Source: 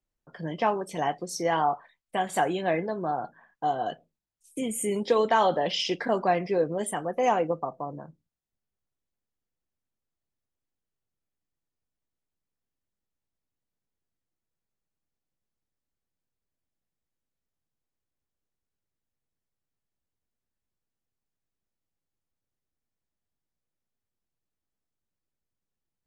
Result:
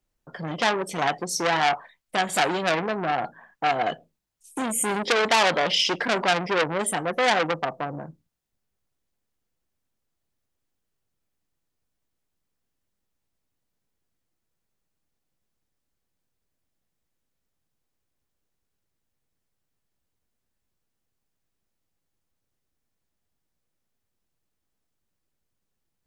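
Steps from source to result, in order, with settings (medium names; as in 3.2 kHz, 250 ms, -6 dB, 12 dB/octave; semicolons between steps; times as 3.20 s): transformer saturation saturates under 3.9 kHz; trim +7.5 dB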